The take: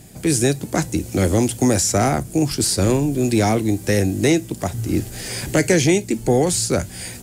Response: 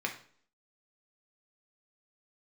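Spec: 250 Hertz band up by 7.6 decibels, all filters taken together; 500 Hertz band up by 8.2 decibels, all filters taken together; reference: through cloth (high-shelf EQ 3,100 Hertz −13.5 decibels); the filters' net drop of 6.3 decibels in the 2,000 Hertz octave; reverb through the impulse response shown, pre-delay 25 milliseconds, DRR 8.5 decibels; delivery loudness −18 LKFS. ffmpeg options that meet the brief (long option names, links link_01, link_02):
-filter_complex "[0:a]equalizer=frequency=250:width_type=o:gain=7,equalizer=frequency=500:width_type=o:gain=8.5,equalizer=frequency=2000:width_type=o:gain=-3.5,asplit=2[link_01][link_02];[1:a]atrim=start_sample=2205,adelay=25[link_03];[link_02][link_03]afir=irnorm=-1:irlink=0,volume=-13.5dB[link_04];[link_01][link_04]amix=inputs=2:normalize=0,highshelf=frequency=3100:gain=-13.5,volume=-5dB"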